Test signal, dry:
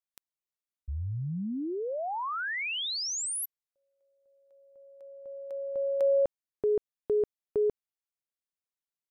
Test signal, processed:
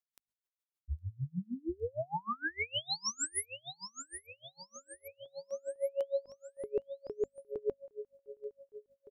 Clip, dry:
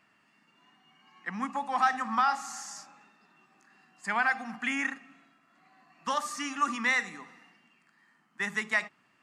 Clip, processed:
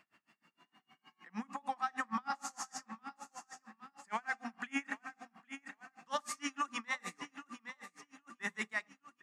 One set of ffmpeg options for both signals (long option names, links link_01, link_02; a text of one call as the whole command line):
ffmpeg -i in.wav -af "alimiter=level_in=1.5dB:limit=-24dB:level=0:latency=1:release=10,volume=-1.5dB,bandreject=frequency=50:width_type=h:width=6,bandreject=frequency=100:width_type=h:width=6,bandreject=frequency=150:width_type=h:width=6,bandreject=frequency=200:width_type=h:width=6,bandreject=frequency=250:width_type=h:width=6,aecho=1:1:811|1622|2433|3244|4055:0.299|0.146|0.0717|0.0351|0.0172,aeval=exprs='val(0)*pow(10,-32*(0.5-0.5*cos(2*PI*6.5*n/s))/20)':channel_layout=same,volume=1.5dB" out.wav